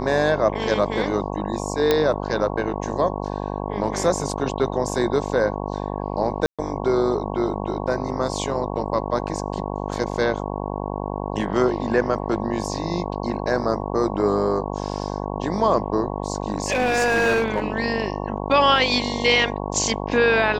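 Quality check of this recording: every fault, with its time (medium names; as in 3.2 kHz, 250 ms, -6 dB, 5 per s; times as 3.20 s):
buzz 50 Hz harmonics 22 -28 dBFS
1.91 s: pop -5 dBFS
6.46–6.59 s: dropout 126 ms
16.52–17.68 s: clipped -15.5 dBFS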